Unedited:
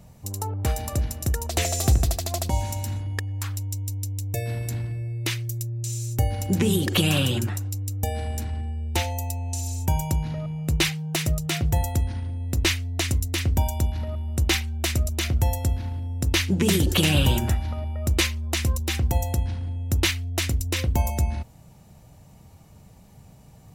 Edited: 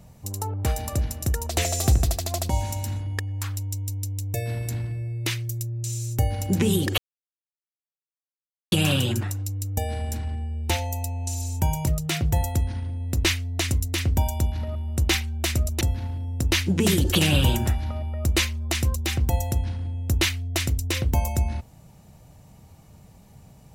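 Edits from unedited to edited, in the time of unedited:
6.98 s: insert silence 1.74 s
10.13–11.27 s: delete
15.21–15.63 s: delete

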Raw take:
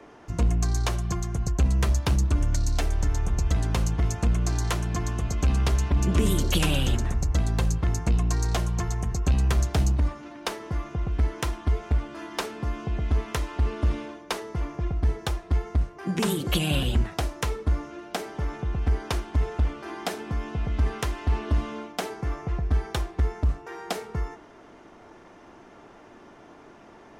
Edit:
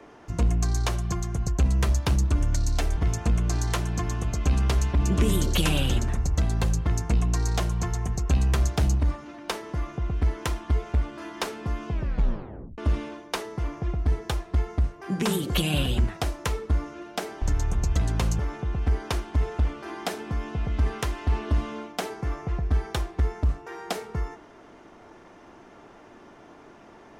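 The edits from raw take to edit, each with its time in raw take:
2.97–3.94 s: move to 18.39 s
12.88 s: tape stop 0.87 s

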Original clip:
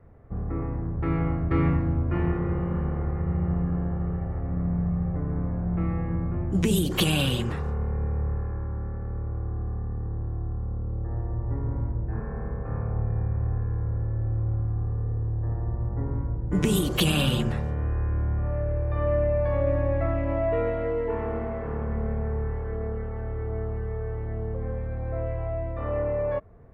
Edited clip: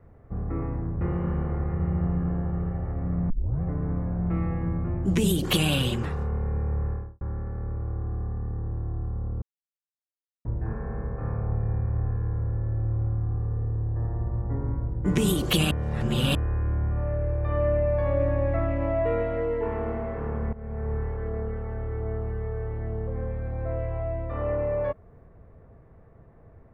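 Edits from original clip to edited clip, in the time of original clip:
1.01–2.48 s: delete
4.77 s: tape start 0.32 s
8.36–8.68 s: studio fade out
10.89–11.92 s: mute
17.18–17.82 s: reverse
22.00–22.40 s: fade in, from -17.5 dB

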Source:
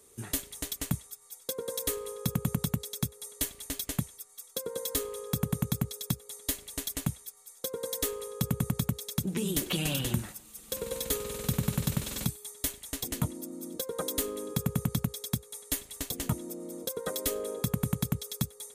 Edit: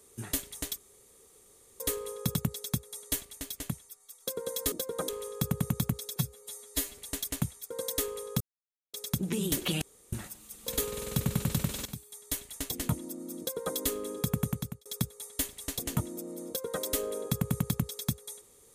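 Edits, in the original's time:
0.78–1.80 s: room tone
2.35–2.64 s: delete
3.54–4.51 s: gain -4 dB
6.08–6.63 s: stretch 1.5×
7.35–7.75 s: delete
8.45–8.98 s: mute
9.86–10.17 s: room tone
10.71–10.99 s: delete
12.18–12.78 s: fade in, from -14 dB
13.72–14.09 s: copy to 5.01 s
14.74–15.18 s: fade out

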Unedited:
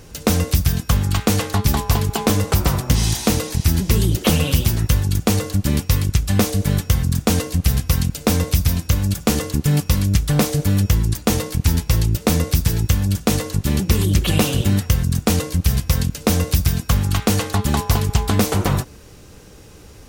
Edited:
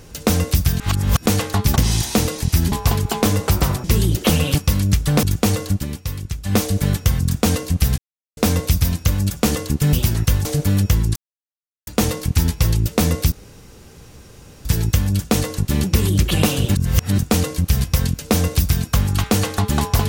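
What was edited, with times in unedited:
0.80–1.26 s: reverse
2.88–3.84 s: move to 1.76 s
4.55–5.07 s: swap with 9.77–10.45 s
5.57–6.41 s: dip -9 dB, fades 0.13 s
7.82–8.21 s: mute
11.16 s: insert silence 0.71 s
12.61 s: insert room tone 1.33 s
14.71–15.14 s: reverse

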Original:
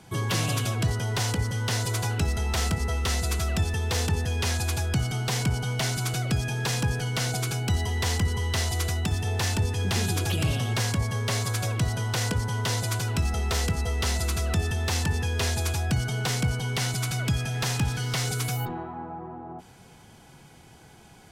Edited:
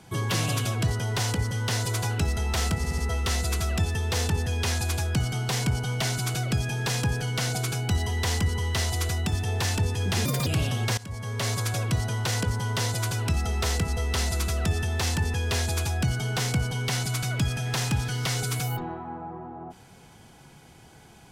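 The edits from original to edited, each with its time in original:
2.77 s: stutter 0.07 s, 4 plays
10.04–10.35 s: speed 144%
10.86–11.39 s: fade in linear, from -20.5 dB

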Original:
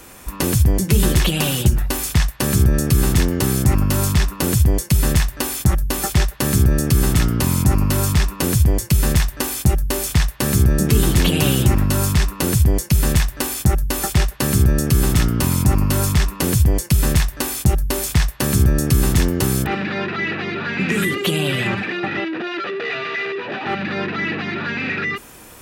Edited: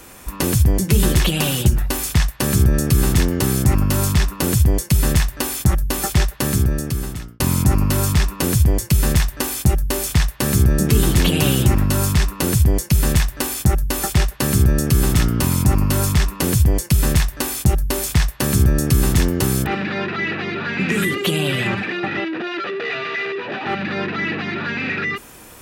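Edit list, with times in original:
6.35–7.40 s: fade out

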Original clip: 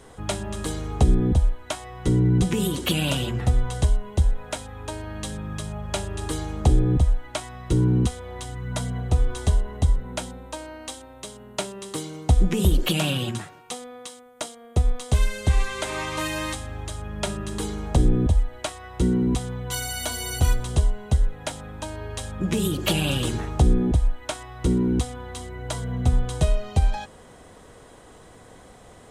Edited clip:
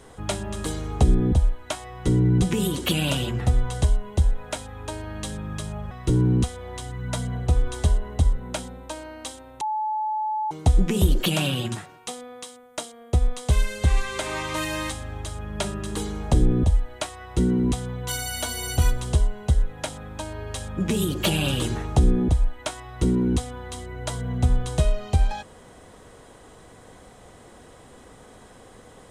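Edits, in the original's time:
5.91–7.54 s: delete
11.24–12.14 s: bleep 862 Hz -23 dBFS

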